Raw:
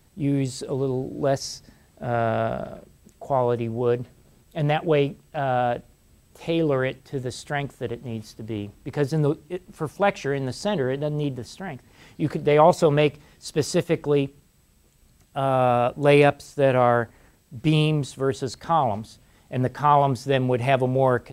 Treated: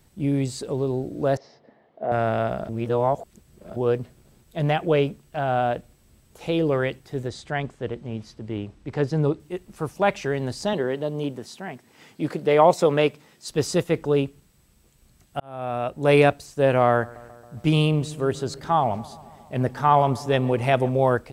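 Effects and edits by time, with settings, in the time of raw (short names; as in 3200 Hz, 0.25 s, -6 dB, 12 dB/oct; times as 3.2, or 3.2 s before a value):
1.37–2.12 speaker cabinet 270–2800 Hz, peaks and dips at 480 Hz +7 dB, 680 Hz +8 dB, 1500 Hz -6 dB, 2500 Hz -9 dB
2.69–3.76 reverse
7.28–9.4 air absorption 70 m
10.73–13.5 HPF 180 Hz
15.4–16.2 fade in linear
16.88–20.94 darkening echo 0.137 s, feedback 74%, low-pass 2500 Hz, level -20.5 dB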